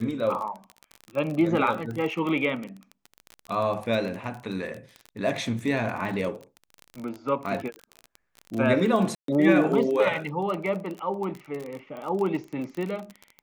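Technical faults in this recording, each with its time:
crackle 29/s -30 dBFS
9.15–9.28 gap 0.133 s

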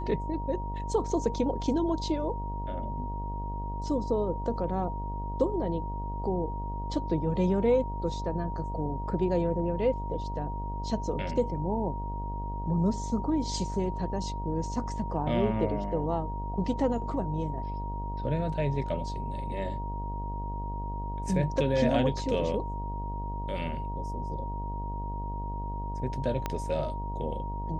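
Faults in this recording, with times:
buzz 50 Hz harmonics 21 -35 dBFS
tone 940 Hz -37 dBFS
26.46 pop -16 dBFS

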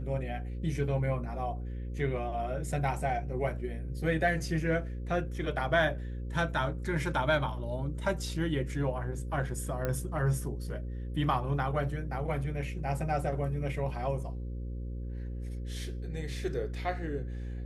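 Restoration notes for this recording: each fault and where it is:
buzz 60 Hz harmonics 9 -37 dBFS
9.85 pop -19 dBFS

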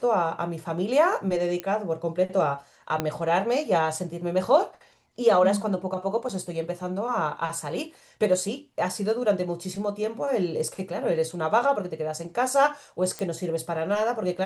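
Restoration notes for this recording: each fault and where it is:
1.6 pop -15 dBFS
3 pop -11 dBFS
6.29 gap 4.9 ms
13.19 pop -18 dBFS

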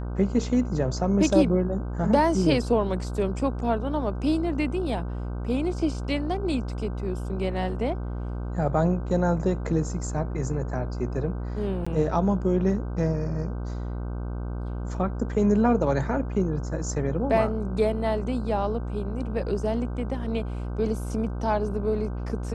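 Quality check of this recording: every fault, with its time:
buzz 60 Hz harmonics 26 -31 dBFS
11.85–11.87 gap 15 ms

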